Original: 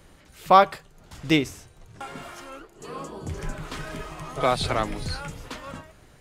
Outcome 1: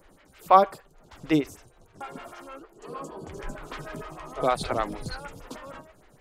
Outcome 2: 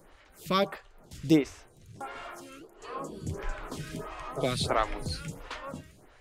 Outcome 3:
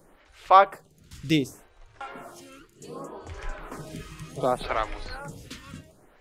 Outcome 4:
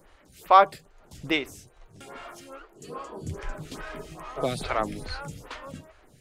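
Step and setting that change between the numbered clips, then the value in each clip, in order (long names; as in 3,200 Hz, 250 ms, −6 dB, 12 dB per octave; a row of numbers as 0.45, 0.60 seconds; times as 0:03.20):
phaser with staggered stages, speed: 6.5, 1.5, 0.67, 2.4 Hertz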